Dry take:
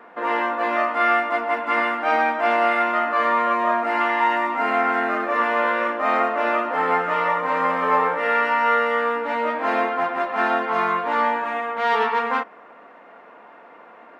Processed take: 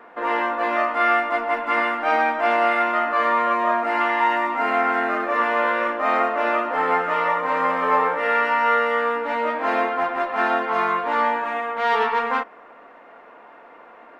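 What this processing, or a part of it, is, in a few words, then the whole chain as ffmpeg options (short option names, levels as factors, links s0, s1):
low shelf boost with a cut just above: -af "lowshelf=f=83:g=8,equalizer=f=190:t=o:w=0.52:g=-5.5"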